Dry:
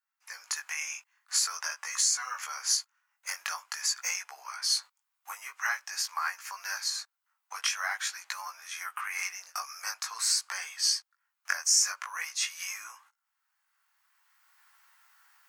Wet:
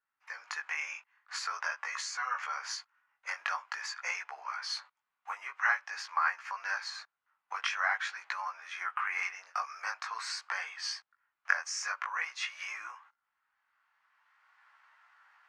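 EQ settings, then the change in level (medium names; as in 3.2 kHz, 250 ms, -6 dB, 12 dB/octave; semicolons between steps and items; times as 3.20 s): low-pass 2.3 kHz 12 dB/octave; +3.5 dB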